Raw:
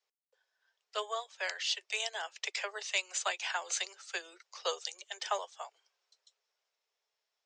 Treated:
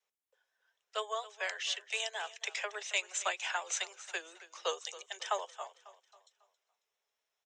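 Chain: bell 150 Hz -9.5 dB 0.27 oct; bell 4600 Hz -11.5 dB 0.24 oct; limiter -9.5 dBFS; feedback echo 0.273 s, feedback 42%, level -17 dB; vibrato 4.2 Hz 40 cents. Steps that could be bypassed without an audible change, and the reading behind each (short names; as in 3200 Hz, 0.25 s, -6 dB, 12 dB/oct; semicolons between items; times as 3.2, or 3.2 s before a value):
bell 150 Hz: input band starts at 320 Hz; limiter -9.5 dBFS: input peak -18.0 dBFS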